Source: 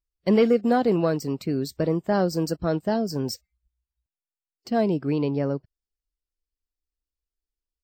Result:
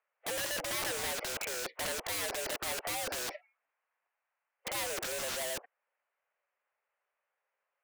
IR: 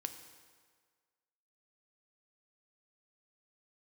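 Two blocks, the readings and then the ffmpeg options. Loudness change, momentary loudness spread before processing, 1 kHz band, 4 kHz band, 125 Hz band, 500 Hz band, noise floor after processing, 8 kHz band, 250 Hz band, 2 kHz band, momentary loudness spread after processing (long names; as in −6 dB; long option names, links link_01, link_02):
−10.5 dB, 9 LU, −10.5 dB, +2.0 dB, −25.0 dB, −16.5 dB, below −85 dBFS, +8.0 dB, −27.0 dB, +0.5 dB, 5 LU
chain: -filter_complex "[0:a]highpass=frequency=440:width_type=q:width=0.5412,highpass=frequency=440:width_type=q:width=1.307,lowpass=frequency=2400:width_type=q:width=0.5176,lowpass=frequency=2400:width_type=q:width=0.7071,lowpass=frequency=2400:width_type=q:width=1.932,afreqshift=100,asplit=2[link_01][link_02];[link_02]highpass=frequency=720:poles=1,volume=36dB,asoftclip=type=tanh:threshold=-10dB[link_03];[link_01][link_03]amix=inputs=2:normalize=0,lowpass=frequency=1500:poles=1,volume=-6dB,aeval=exprs='(mod(15*val(0)+1,2)-1)/15':channel_layout=same,volume=-7dB"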